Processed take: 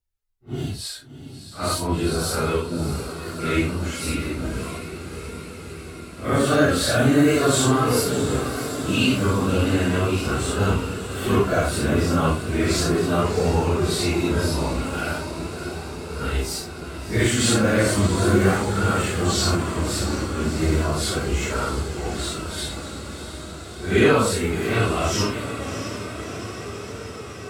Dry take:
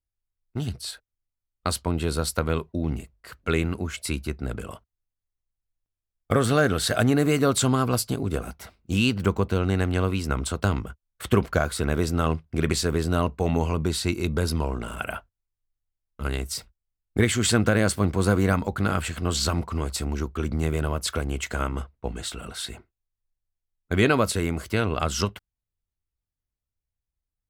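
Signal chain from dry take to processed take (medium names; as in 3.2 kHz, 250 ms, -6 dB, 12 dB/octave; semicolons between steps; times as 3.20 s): phase randomisation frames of 200 ms; echo that smears into a reverb 656 ms, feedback 74%, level -10 dB; flange 0.37 Hz, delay 2.1 ms, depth 1.6 ms, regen +63%; trim +7.5 dB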